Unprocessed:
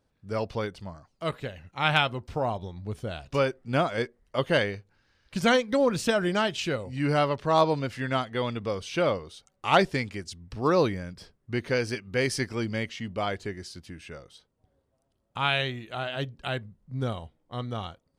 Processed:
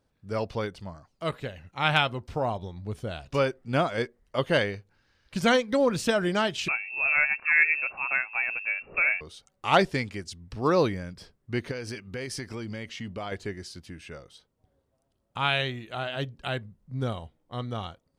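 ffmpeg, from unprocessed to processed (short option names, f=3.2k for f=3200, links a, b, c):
-filter_complex "[0:a]asettb=1/sr,asplit=3[a][b][c];[a]atrim=end=6.684[d];[b]atrim=start=6.68:end=9.21,asetpts=PTS-STARTPTS,afade=t=in:d=0.004:c=qsin,afade=t=out:st=2.526:d=0.004:c=qsin,lowpass=f=2.4k:t=q:w=0.5098,lowpass=f=2.4k:t=q:w=0.6013,lowpass=f=2.4k:t=q:w=0.9,lowpass=f=2.4k:t=q:w=2.563,afreqshift=-2800[e];[c]atrim=start=9.206[f];[d][e]acrossfade=d=0.004:c1=hsin:c2=qsin[g];[g][f]acrossfade=d=0.004:c1=qsin:c2=hsin,asettb=1/sr,asplit=3[h][i][j];[h]atrim=end=11.714[k];[i]atrim=start=11.71:end=13.32,asetpts=PTS-STARTPTS,afade=t=in:d=0.004:c=qsin,afade=t=out:st=1.606:d=0.004:c=qsin,acompressor=threshold=-31dB:ratio=6:attack=3.2:release=140:knee=1:detection=peak[l];[j]atrim=start=13.316[m];[k][l]acrossfade=d=0.004:c1=hsin:c2=qsin[n];[n][m]acrossfade=d=0.004:c1=qsin:c2=hsin"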